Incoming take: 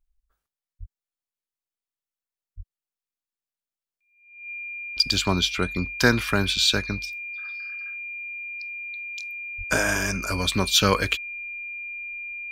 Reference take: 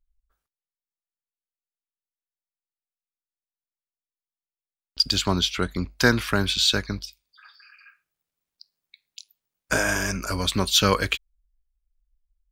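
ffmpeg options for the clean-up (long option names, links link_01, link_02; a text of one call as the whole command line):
ffmpeg -i in.wav -filter_complex "[0:a]bandreject=frequency=2400:width=30,asplit=3[link_01][link_02][link_03];[link_01]afade=type=out:start_time=0.79:duration=0.02[link_04];[link_02]highpass=frequency=140:width=0.5412,highpass=frequency=140:width=1.3066,afade=type=in:start_time=0.79:duration=0.02,afade=type=out:start_time=0.91:duration=0.02[link_05];[link_03]afade=type=in:start_time=0.91:duration=0.02[link_06];[link_04][link_05][link_06]amix=inputs=3:normalize=0,asplit=3[link_07][link_08][link_09];[link_07]afade=type=out:start_time=2.56:duration=0.02[link_10];[link_08]highpass=frequency=140:width=0.5412,highpass=frequency=140:width=1.3066,afade=type=in:start_time=2.56:duration=0.02,afade=type=out:start_time=2.68:duration=0.02[link_11];[link_09]afade=type=in:start_time=2.68:duration=0.02[link_12];[link_10][link_11][link_12]amix=inputs=3:normalize=0,asplit=3[link_13][link_14][link_15];[link_13]afade=type=out:start_time=9.57:duration=0.02[link_16];[link_14]highpass=frequency=140:width=0.5412,highpass=frequency=140:width=1.3066,afade=type=in:start_time=9.57:duration=0.02,afade=type=out:start_time=9.69:duration=0.02[link_17];[link_15]afade=type=in:start_time=9.69:duration=0.02[link_18];[link_16][link_17][link_18]amix=inputs=3:normalize=0" out.wav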